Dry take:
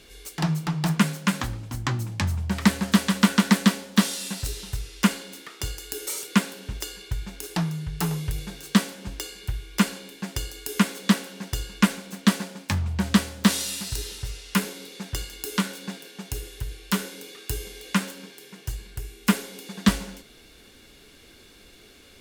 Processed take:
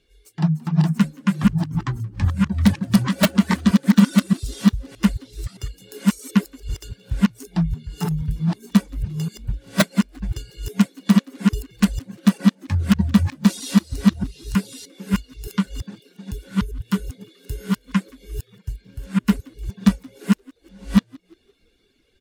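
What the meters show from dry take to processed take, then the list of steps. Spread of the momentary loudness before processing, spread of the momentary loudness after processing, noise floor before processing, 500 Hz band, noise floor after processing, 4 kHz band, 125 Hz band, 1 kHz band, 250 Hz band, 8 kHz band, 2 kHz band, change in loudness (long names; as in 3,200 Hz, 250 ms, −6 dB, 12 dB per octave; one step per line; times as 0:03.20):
15 LU, 18 LU, −51 dBFS, +2.5 dB, −61 dBFS, −2.5 dB, +6.0 dB, −1.0 dB, +6.5 dB, −4.5 dB, −1.5 dB, +5.0 dB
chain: delay that plays each chunk backwards 619 ms, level −0.5 dB
reverb reduction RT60 0.59 s
in parallel at 0 dB: brickwall limiter −12 dBFS, peak gain reduction 11.5 dB
on the sum: wrap-around overflow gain 3 dB
on a send: echo with shifted repeats 174 ms, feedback 49%, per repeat +66 Hz, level −18 dB
on the sum: every bin expanded away from the loudest bin 1.5 to 1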